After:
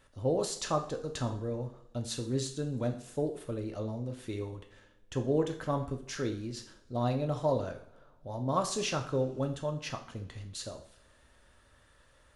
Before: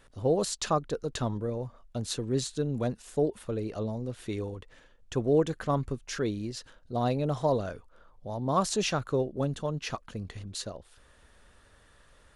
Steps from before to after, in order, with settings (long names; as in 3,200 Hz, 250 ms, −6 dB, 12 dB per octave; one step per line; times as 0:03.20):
coupled-rooms reverb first 0.5 s, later 2.3 s, from −25 dB, DRR 4 dB
level −4.5 dB